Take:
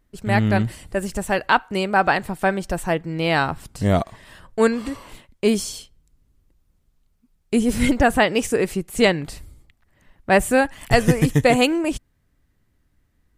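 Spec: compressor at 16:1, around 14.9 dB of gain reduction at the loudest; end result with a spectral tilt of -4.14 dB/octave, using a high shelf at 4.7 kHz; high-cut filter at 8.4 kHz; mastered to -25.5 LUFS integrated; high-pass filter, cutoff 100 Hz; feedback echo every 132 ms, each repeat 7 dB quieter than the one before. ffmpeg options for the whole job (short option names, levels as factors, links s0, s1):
-af "highpass=100,lowpass=8400,highshelf=f=4700:g=8.5,acompressor=threshold=0.0562:ratio=16,aecho=1:1:132|264|396|528|660:0.447|0.201|0.0905|0.0407|0.0183,volume=1.78"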